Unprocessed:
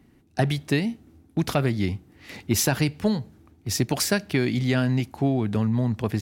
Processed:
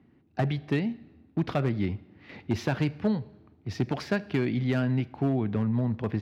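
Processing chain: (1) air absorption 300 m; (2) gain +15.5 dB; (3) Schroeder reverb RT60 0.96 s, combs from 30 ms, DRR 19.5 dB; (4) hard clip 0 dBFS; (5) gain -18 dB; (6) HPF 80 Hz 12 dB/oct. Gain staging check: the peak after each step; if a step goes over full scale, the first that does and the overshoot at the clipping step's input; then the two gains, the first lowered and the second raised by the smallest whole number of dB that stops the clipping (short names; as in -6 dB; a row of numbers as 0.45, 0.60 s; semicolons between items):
-11.5, +4.0, +4.5, 0.0, -18.0, -14.0 dBFS; step 2, 4.5 dB; step 2 +10.5 dB, step 5 -13 dB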